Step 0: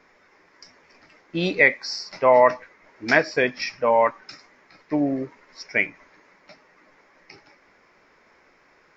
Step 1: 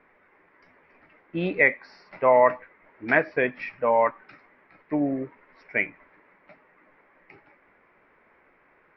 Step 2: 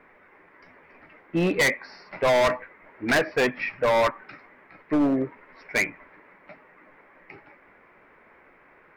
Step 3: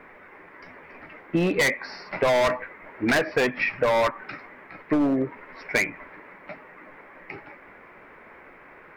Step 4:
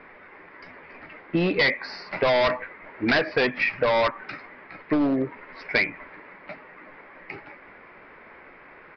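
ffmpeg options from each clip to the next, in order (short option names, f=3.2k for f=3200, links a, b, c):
-af "lowpass=f=2.6k:w=0.5412,lowpass=f=2.6k:w=1.3066,volume=-2.5dB"
-af "volume=23dB,asoftclip=hard,volume=-23dB,volume=5.5dB"
-af "acompressor=threshold=-27dB:ratio=6,volume=7dB"
-af "aresample=11025,aresample=44100,aemphasis=mode=production:type=50fm"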